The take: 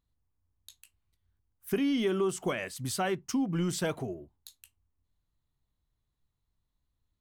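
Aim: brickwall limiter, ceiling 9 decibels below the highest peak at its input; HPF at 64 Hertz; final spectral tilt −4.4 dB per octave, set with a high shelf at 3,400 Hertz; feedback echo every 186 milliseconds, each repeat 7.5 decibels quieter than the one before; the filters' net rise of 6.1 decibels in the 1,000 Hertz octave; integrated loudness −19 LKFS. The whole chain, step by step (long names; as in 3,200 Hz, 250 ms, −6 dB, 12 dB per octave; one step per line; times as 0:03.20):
high-pass filter 64 Hz
parametric band 1,000 Hz +8 dB
high-shelf EQ 3,400 Hz +8 dB
brickwall limiter −23.5 dBFS
repeating echo 186 ms, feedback 42%, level −7.5 dB
level +13 dB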